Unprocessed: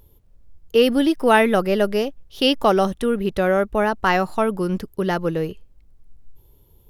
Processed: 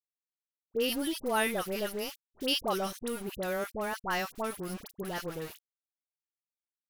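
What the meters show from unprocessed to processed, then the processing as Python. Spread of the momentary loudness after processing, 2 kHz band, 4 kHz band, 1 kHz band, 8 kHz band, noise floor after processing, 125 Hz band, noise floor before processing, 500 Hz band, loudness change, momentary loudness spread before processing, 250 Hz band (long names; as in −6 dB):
10 LU, −11.5 dB, −8.5 dB, −14.0 dB, −0.5 dB, below −85 dBFS, −16.0 dB, −54 dBFS, −15.0 dB, −13.5 dB, 9 LU, −15.5 dB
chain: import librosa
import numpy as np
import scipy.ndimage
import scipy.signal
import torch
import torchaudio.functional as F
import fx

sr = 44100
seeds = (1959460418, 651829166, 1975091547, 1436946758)

y = scipy.signal.lfilter([1.0, -0.8], [1.0], x)
y = np.where(np.abs(y) >= 10.0 ** (-38.5 / 20.0), y, 0.0)
y = fx.dispersion(y, sr, late='highs', ms=66.0, hz=1200.0)
y = F.gain(torch.from_numpy(y), -1.5).numpy()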